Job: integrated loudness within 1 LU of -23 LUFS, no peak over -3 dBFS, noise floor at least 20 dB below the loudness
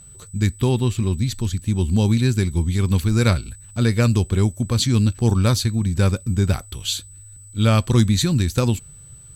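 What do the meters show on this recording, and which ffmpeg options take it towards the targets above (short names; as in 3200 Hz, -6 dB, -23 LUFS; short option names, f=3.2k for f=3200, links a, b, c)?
steady tone 8000 Hz; tone level -43 dBFS; loudness -20.0 LUFS; peak -4.5 dBFS; loudness target -23.0 LUFS
-> -af "bandreject=f=8k:w=30"
-af "volume=-3dB"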